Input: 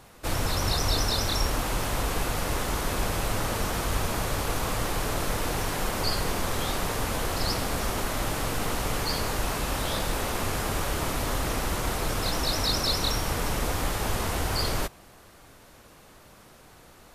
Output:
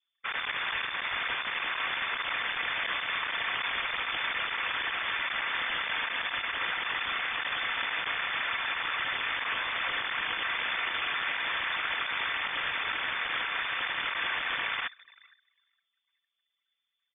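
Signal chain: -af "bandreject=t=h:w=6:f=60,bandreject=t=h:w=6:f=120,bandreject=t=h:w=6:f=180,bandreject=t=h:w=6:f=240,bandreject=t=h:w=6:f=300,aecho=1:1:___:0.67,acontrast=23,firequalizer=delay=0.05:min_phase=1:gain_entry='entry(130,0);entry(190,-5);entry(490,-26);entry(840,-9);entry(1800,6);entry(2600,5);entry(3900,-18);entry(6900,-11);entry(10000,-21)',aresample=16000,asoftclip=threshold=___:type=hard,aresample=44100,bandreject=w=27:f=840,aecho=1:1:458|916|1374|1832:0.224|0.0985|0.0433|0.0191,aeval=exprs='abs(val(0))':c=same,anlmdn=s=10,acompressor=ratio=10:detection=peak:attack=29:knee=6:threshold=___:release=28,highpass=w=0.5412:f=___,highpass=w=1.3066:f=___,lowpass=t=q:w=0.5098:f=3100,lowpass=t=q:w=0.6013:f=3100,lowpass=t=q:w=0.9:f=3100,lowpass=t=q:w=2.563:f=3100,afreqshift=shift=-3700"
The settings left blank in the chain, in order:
4.7, -17.5dB, -22dB, 170, 170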